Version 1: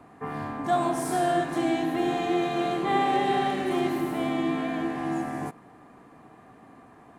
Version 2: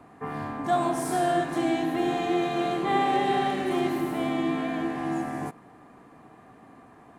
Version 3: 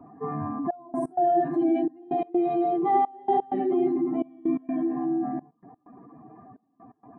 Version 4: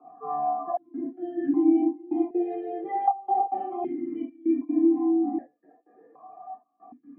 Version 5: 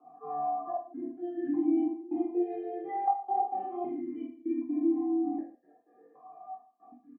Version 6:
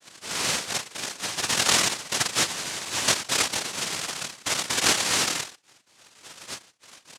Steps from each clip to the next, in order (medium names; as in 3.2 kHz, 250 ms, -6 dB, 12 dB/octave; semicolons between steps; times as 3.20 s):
no audible change
spectral contrast enhancement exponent 2.2; trance gate "xxxxxx..x." 128 bpm -24 dB; trim +3 dB
flange 0.29 Hz, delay 0.3 ms, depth 3.9 ms, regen +31%; reverberation, pre-delay 3 ms, DRR -5 dB; stepped vowel filter 1.3 Hz
reverse bouncing-ball echo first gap 20 ms, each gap 1.25×, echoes 5; trim -7 dB
noise-vocoded speech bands 1; trim +4.5 dB